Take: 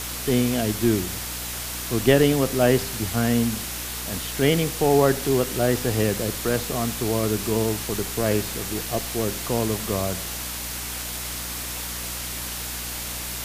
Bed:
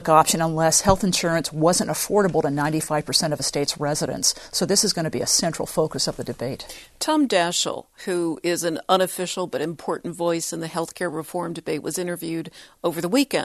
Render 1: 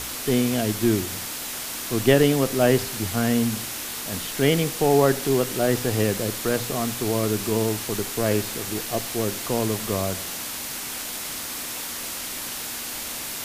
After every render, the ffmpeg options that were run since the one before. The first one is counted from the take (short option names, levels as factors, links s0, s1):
-af "bandreject=f=60:t=h:w=4,bandreject=f=120:t=h:w=4,bandreject=f=180:t=h:w=4"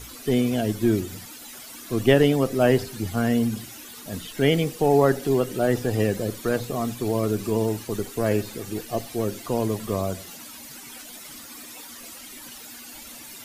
-af "afftdn=nr=14:nf=-32"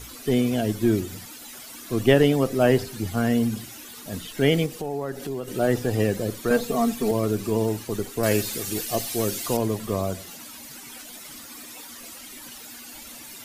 -filter_complex "[0:a]asettb=1/sr,asplit=3[s0][s1][s2];[s0]atrim=end=4.664[s3];[s1]atrim=start=4.66:end=5.48,asetpts=PTS-STARTPTS,afade=t=in:d=0.004:c=qsin,afade=t=out:st=0.816:d=0.004:c=qsin,acompressor=threshold=0.0282:ratio=2.5:attack=3.2:release=140:knee=1:detection=peak[s4];[s2]atrim=start=5.476[s5];[s3][s4]acrossfade=d=0.004:c1=hsin:c2=qsin[s6];[s6][s5]acrossfade=d=0.004:c1=qsin:c2=hsin,asettb=1/sr,asplit=3[s7][s8][s9];[s7]atrim=end=6.504[s10];[s8]atrim=start=6.5:end=7.11,asetpts=PTS-STARTPTS,afade=t=in:d=0.004:c=qsin,afade=t=out:st=0.606:d=0.004:c=qsin,aecho=1:1:4.4:0.99,atrim=end_sample=26901[s11];[s9]atrim=start=7.106[s12];[s10][s11]acrossfade=d=0.004:c1=hsin:c2=qsin[s13];[s13][s12]acrossfade=d=0.004:c1=qsin:c2=hsin,asettb=1/sr,asplit=3[s14][s15][s16];[s14]atrim=end=8.234[s17];[s15]atrim=start=8.23:end=9.57,asetpts=PTS-STARTPTS,afade=t=in:d=0.004:c=qsin,afade=t=out:st=1.336:d=0.004:c=qsin,highshelf=f=2300:g=11[s18];[s16]atrim=start=9.566[s19];[s17][s18]acrossfade=d=0.004:c1=hsin:c2=qsin[s20];[s20][s19]acrossfade=d=0.004:c1=qsin:c2=hsin"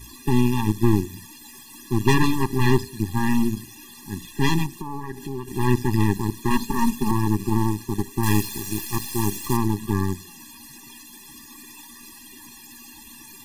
-af "aeval=exprs='0.631*(cos(1*acos(clip(val(0)/0.631,-1,1)))-cos(1*PI/2))+0.158*(cos(8*acos(clip(val(0)/0.631,-1,1)))-cos(8*PI/2))':c=same,afftfilt=real='re*eq(mod(floor(b*sr/1024/400),2),0)':imag='im*eq(mod(floor(b*sr/1024/400),2),0)':win_size=1024:overlap=0.75"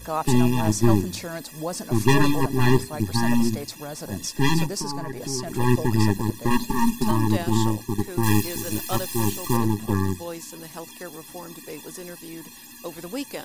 -filter_complex "[1:a]volume=0.251[s0];[0:a][s0]amix=inputs=2:normalize=0"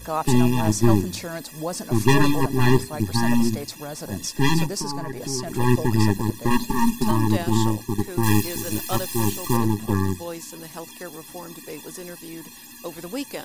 -af "volume=1.12"